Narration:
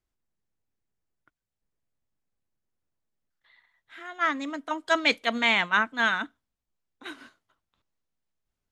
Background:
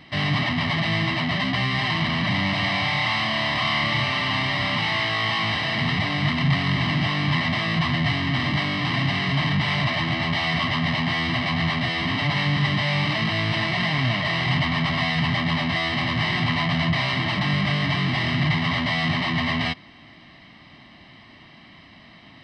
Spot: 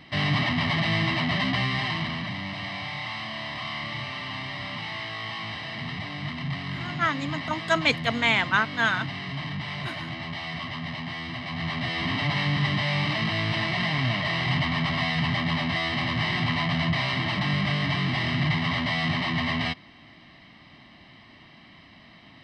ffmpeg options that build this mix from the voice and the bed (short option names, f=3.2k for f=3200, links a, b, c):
-filter_complex "[0:a]adelay=2800,volume=0.5dB[a];[1:a]volume=6dB,afade=t=out:st=1.5:d=0.85:silence=0.354813,afade=t=in:st=11.44:d=0.61:silence=0.421697[b];[a][b]amix=inputs=2:normalize=0"